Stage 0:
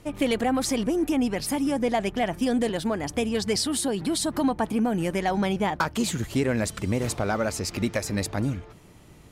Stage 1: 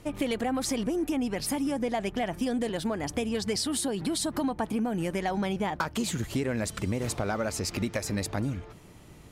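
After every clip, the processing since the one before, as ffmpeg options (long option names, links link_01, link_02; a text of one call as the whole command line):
ffmpeg -i in.wav -af "acompressor=threshold=-27dB:ratio=3" out.wav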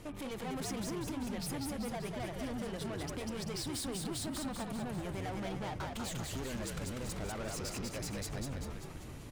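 ffmpeg -i in.wav -filter_complex "[0:a]alimiter=level_in=1.5dB:limit=-24dB:level=0:latency=1:release=348,volume=-1.5dB,asoftclip=type=tanh:threshold=-38.5dB,asplit=9[link_01][link_02][link_03][link_04][link_05][link_06][link_07][link_08][link_09];[link_02]adelay=194,afreqshift=-63,volume=-3dB[link_10];[link_03]adelay=388,afreqshift=-126,volume=-7.9dB[link_11];[link_04]adelay=582,afreqshift=-189,volume=-12.8dB[link_12];[link_05]adelay=776,afreqshift=-252,volume=-17.6dB[link_13];[link_06]adelay=970,afreqshift=-315,volume=-22.5dB[link_14];[link_07]adelay=1164,afreqshift=-378,volume=-27.4dB[link_15];[link_08]adelay=1358,afreqshift=-441,volume=-32.3dB[link_16];[link_09]adelay=1552,afreqshift=-504,volume=-37.2dB[link_17];[link_01][link_10][link_11][link_12][link_13][link_14][link_15][link_16][link_17]amix=inputs=9:normalize=0" out.wav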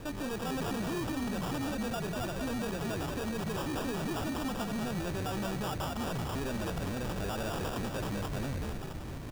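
ffmpeg -i in.wav -af "acrusher=samples=21:mix=1:aa=0.000001,asoftclip=type=tanh:threshold=-36dB,volume=7dB" out.wav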